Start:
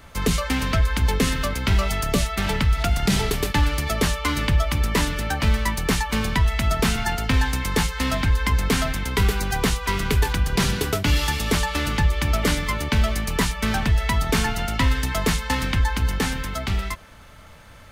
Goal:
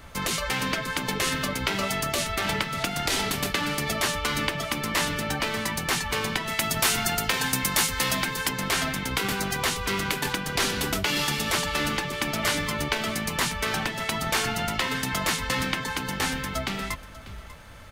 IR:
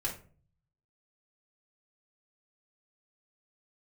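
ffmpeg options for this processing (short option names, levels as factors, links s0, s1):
-filter_complex "[0:a]asettb=1/sr,asplit=3[s0][s1][s2];[s0]atrim=end=6.494[s3];[s1]atrim=start=6.49:end=8.49,asetpts=PTS-STARTPTS,afade=t=in:d=0.004:c=qsin,afade=t=out:st=1.996:d=0.004:c=qsin,highshelf=f=6500:g=10.5[s4];[s2]atrim=start=8.486[s5];[s3][s4]acrossfade=d=0.004:c1=hsin:c2=qsin[s6];[s6][s5]acrossfade=d=0.004:c1=qsin:c2=hsin,aecho=1:1:593:0.126,afftfilt=real='re*lt(hypot(re,im),0.355)':imag='im*lt(hypot(re,im),0.355)':win_size=1024:overlap=0.75"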